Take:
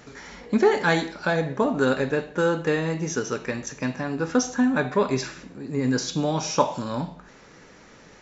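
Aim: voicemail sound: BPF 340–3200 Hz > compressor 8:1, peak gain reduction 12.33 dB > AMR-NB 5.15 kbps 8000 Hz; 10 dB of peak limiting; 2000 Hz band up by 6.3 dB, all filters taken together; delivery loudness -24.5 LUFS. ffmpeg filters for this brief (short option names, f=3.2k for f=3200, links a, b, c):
-af "equalizer=f=2k:t=o:g=9,alimiter=limit=-13.5dB:level=0:latency=1,highpass=340,lowpass=3.2k,acompressor=threshold=-31dB:ratio=8,volume=13.5dB" -ar 8000 -c:a libopencore_amrnb -b:a 5150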